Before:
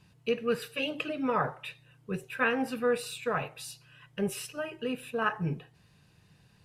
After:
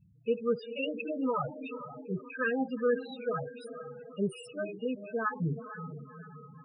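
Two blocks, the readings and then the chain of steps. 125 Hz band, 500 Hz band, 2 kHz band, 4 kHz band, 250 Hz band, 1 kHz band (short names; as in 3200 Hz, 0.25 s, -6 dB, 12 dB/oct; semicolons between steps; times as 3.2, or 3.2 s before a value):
0.0 dB, -0.5 dB, -4.5 dB, -8.0 dB, 0.0 dB, -3.5 dB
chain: diffused feedback echo 0.454 s, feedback 52%, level -9.5 dB; loudest bins only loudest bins 8; ending taper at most 410 dB/s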